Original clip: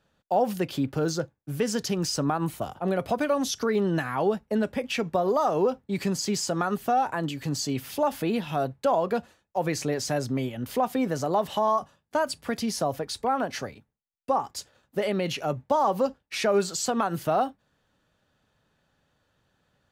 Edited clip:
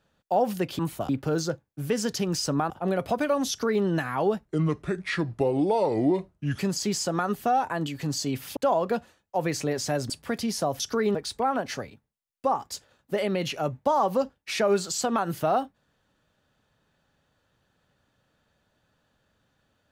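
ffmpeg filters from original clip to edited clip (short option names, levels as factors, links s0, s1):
-filter_complex "[0:a]asplit=10[s0][s1][s2][s3][s4][s5][s6][s7][s8][s9];[s0]atrim=end=0.792[s10];[s1]atrim=start=2.398:end=2.702[s11];[s2]atrim=start=0.788:end=2.402[s12];[s3]atrim=start=2.698:end=4.454[s13];[s4]atrim=start=4.45:end=6.01,asetpts=PTS-STARTPTS,asetrate=32193,aresample=44100,atrim=end_sample=94241,asetpts=PTS-STARTPTS[s14];[s5]atrim=start=6.006:end=7.992[s15];[s6]atrim=start=8.778:end=10.312[s16];[s7]atrim=start=12.288:end=12.992[s17];[s8]atrim=start=3.488:end=3.842[s18];[s9]atrim=start=12.988[s19];[s10][s11]acrossfade=d=0.004:c1=hsin:c2=hsin[s20];[s20][s12]acrossfade=d=0.004:c1=hsin:c2=hsin[s21];[s21][s13]acrossfade=d=0.004:c1=hsin:c2=hsin[s22];[s22][s14]acrossfade=d=0.004:c1=hsin:c2=hsin[s23];[s23][s15]acrossfade=d=0.004:c1=hsin:c2=hsin[s24];[s24][s16]acrossfade=d=0.004:c1=hsin:c2=hsin[s25];[s25][s17]acrossfade=d=0.004:c1=hsin:c2=hsin[s26];[s26][s18]acrossfade=d=0.004:c1=hsin:c2=hsin[s27];[s27][s19]acrossfade=d=0.004:c1=hsin:c2=hsin"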